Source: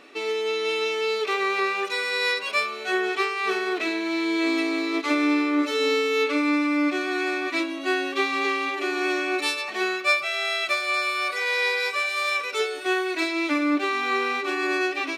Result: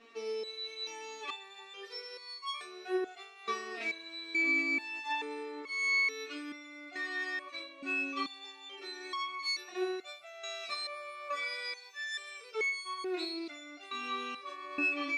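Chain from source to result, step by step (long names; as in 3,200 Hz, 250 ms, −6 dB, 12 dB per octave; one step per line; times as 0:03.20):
low-pass filter 8,100 Hz 12 dB per octave
step-sequenced resonator 2.3 Hz 230–1,100 Hz
level +5 dB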